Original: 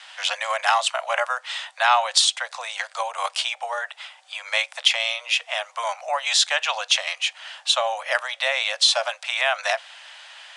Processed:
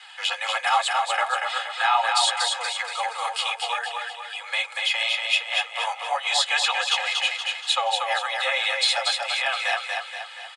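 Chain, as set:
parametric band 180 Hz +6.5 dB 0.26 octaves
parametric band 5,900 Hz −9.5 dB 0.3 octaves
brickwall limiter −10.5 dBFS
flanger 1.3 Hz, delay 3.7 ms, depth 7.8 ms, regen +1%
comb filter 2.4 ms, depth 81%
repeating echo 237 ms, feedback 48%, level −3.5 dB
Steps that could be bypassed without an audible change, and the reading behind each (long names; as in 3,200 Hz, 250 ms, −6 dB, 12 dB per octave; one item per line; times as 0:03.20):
parametric band 180 Hz: nothing at its input below 430 Hz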